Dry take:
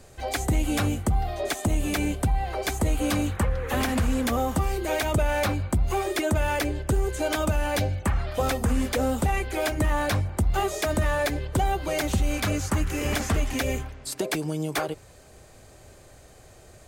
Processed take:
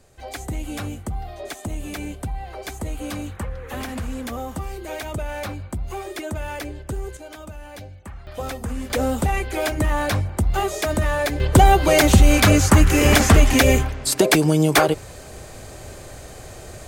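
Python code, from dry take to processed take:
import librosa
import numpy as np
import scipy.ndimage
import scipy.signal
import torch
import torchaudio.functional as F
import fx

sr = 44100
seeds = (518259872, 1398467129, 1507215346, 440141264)

y = fx.gain(x, sr, db=fx.steps((0.0, -5.0), (7.17, -13.0), (8.27, -4.5), (8.9, 3.0), (11.4, 12.0)))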